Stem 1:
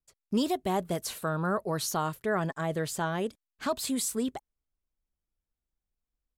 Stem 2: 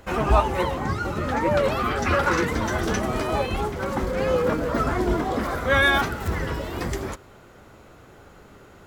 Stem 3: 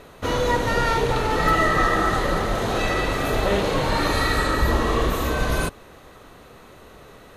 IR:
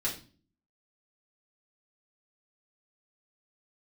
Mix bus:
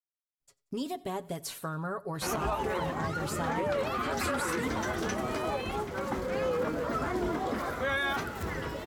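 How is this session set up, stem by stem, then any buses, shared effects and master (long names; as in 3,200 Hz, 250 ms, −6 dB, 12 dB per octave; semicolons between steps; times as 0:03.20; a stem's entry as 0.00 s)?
−3.5 dB, 0.40 s, send −22 dB, echo send −23 dB, comb filter 7.2 ms, depth 53%; downward compressor 4 to 1, threshold −29 dBFS, peak gain reduction 7 dB
−6.0 dB, 2.15 s, no send, no echo send, low-shelf EQ 77 Hz −12 dB
muted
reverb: on, RT60 0.40 s, pre-delay 3 ms
echo: repeating echo 91 ms, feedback 48%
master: brickwall limiter −22 dBFS, peak gain reduction 9 dB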